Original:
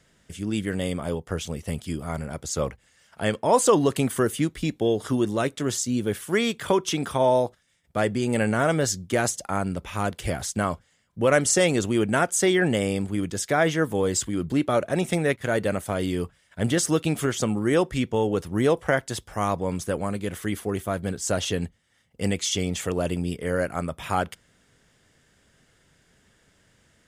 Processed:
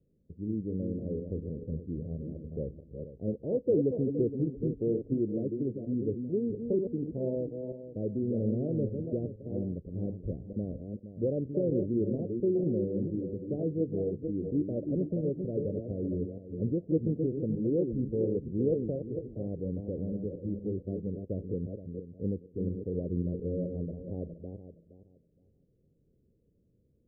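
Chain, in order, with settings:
feedback delay that plays each chunk backwards 234 ms, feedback 45%, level −5.5 dB
Butterworth low-pass 510 Hz 48 dB per octave
level −6.5 dB

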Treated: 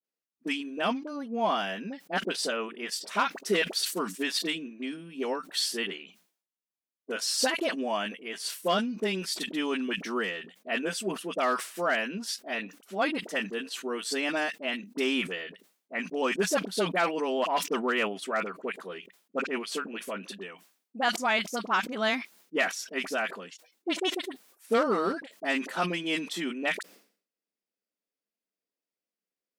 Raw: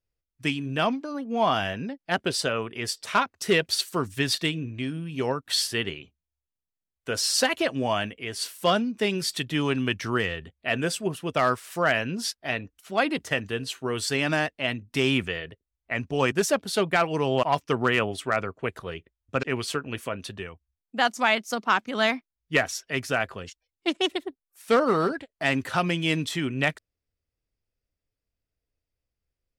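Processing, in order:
Butterworth high-pass 180 Hz 96 dB per octave
all-pass dispersion highs, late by 42 ms, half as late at 880 Hz
level that may fall only so fast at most 120 dB per second
level −4 dB

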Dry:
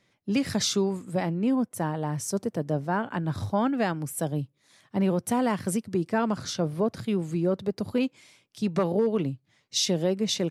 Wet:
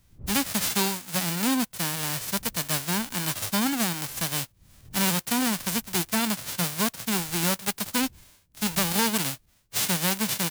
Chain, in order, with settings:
spectral envelope flattened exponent 0.1
wind on the microphone 97 Hz −54 dBFS

